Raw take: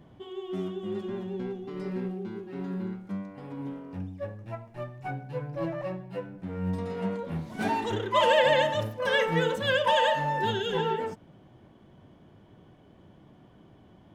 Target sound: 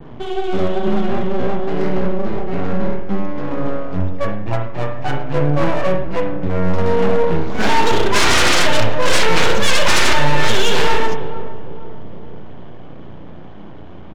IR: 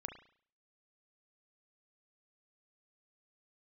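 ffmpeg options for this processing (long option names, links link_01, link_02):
-filter_complex "[0:a]adynamicequalizer=threshold=0.00501:dfrequency=5000:dqfactor=0.72:tfrequency=5000:tqfactor=0.72:attack=5:release=100:ratio=0.375:range=4:mode=boostabove:tftype=bell,aresample=16000,aeval=exprs='max(val(0),0)':channel_layout=same,aresample=44100,asplit=2[link_01][link_02];[link_02]adelay=461,lowpass=frequency=890:poles=1,volume=-16dB,asplit=2[link_03][link_04];[link_04]adelay=461,lowpass=frequency=890:poles=1,volume=0.51,asplit=2[link_05][link_06];[link_06]adelay=461,lowpass=frequency=890:poles=1,volume=0.51,asplit=2[link_07][link_08];[link_08]adelay=461,lowpass=frequency=890:poles=1,volume=0.51,asplit=2[link_09][link_10];[link_10]adelay=461,lowpass=frequency=890:poles=1,volume=0.51[link_11];[link_01][link_03][link_05][link_07][link_09][link_11]amix=inputs=6:normalize=0,aeval=exprs='0.282*sin(PI/2*4.47*val(0)/0.282)':channel_layout=same,adynamicsmooth=sensitivity=6.5:basefreq=4400[link_12];[1:a]atrim=start_sample=2205[link_13];[link_12][link_13]afir=irnorm=-1:irlink=0,volume=7dB"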